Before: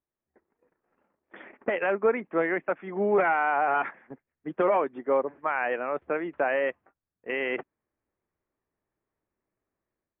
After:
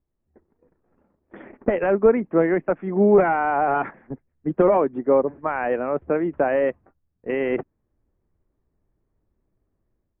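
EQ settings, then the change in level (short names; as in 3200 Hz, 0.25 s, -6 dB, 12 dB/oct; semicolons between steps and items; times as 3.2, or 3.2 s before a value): tilt -4.5 dB/oct; +2.5 dB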